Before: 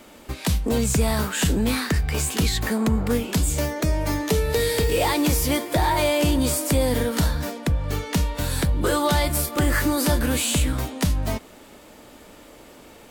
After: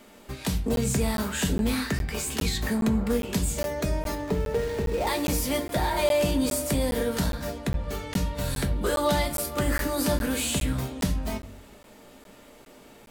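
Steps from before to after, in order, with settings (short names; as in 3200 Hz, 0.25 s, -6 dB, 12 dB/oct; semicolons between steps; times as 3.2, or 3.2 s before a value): 4.15–5.07 median filter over 15 samples; reverb RT60 0.45 s, pre-delay 4 ms, DRR 5 dB; crackling interface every 0.41 s, samples 512, zero, from 0.76; gain -5.5 dB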